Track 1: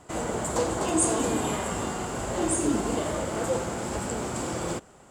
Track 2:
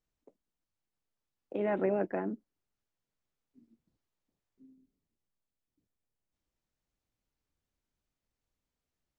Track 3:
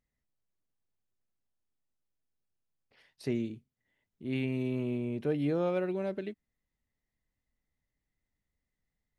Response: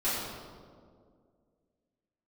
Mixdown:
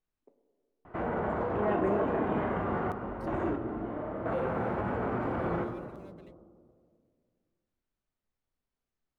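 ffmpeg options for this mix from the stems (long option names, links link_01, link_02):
-filter_complex "[0:a]lowpass=frequency=1800:width=0.5412,lowpass=frequency=1800:width=1.3066,bandreject=frequency=72.27:width_type=h:width=4,bandreject=frequency=144.54:width_type=h:width=4,bandreject=frequency=216.81:width_type=h:width=4,bandreject=frequency=289.08:width_type=h:width=4,bandreject=frequency=361.35:width_type=h:width=4,bandreject=frequency=433.62:width_type=h:width=4,bandreject=frequency=505.89:width_type=h:width=4,bandreject=frequency=578.16:width_type=h:width=4,bandreject=frequency=650.43:width_type=h:width=4,bandreject=frequency=722.7:width_type=h:width=4,bandreject=frequency=794.97:width_type=h:width=4,bandreject=frequency=867.24:width_type=h:width=4,bandreject=frequency=939.51:width_type=h:width=4,bandreject=frequency=1011.78:width_type=h:width=4,bandreject=frequency=1084.05:width_type=h:width=4,bandreject=frequency=1156.32:width_type=h:width=4,bandreject=frequency=1228.59:width_type=h:width=4,bandreject=frequency=1300.86:width_type=h:width=4,bandreject=frequency=1373.13:width_type=h:width=4,bandreject=frequency=1445.4:width_type=h:width=4,bandreject=frequency=1517.67:width_type=h:width=4,bandreject=frequency=1589.94:width_type=h:width=4,bandreject=frequency=1662.21:width_type=h:width=4,bandreject=frequency=1734.48:width_type=h:width=4,bandreject=frequency=1806.75:width_type=h:width=4,bandreject=frequency=1879.02:width_type=h:width=4,bandreject=frequency=1951.29:width_type=h:width=4,bandreject=frequency=2023.56:width_type=h:width=4,bandreject=frequency=2095.83:width_type=h:width=4,bandreject=frequency=2168.1:width_type=h:width=4,bandreject=frequency=2240.37:width_type=h:width=4,bandreject=frequency=2312.64:width_type=h:width=4,bandreject=frequency=2384.91:width_type=h:width=4,alimiter=level_in=1.5dB:limit=-24dB:level=0:latency=1:release=26,volume=-1.5dB,adelay=850,volume=0dB,asplit=2[link_01][link_02];[link_02]volume=-15.5dB[link_03];[1:a]lowpass=1500,crystalizer=i=4:c=0,volume=-3.5dB,asplit=2[link_04][link_05];[link_05]volume=-15.5dB[link_06];[2:a]aeval=exprs='sgn(val(0))*max(abs(val(0))-0.0015,0)':channel_layout=same,volume=-18.5dB,asplit=2[link_07][link_08];[link_08]apad=whole_len=262728[link_09];[link_01][link_09]sidechaingate=range=-33dB:threshold=-60dB:ratio=16:detection=peak[link_10];[3:a]atrim=start_sample=2205[link_11];[link_03][link_06]amix=inputs=2:normalize=0[link_12];[link_12][link_11]afir=irnorm=-1:irlink=0[link_13];[link_10][link_04][link_07][link_13]amix=inputs=4:normalize=0,highshelf=frequency=3500:gain=9.5"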